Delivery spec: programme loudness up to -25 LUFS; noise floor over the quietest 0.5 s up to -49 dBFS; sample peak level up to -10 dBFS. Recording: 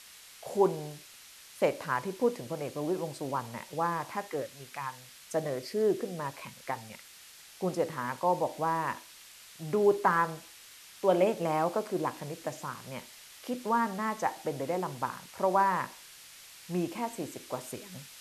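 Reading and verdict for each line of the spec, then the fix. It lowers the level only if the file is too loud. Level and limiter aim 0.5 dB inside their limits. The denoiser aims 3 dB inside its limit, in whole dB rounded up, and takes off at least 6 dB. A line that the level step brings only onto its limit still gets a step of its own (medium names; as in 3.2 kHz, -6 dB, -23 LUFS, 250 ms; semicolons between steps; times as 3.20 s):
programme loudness -32.0 LUFS: pass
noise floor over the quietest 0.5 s -53 dBFS: pass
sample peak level -11.5 dBFS: pass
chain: none needed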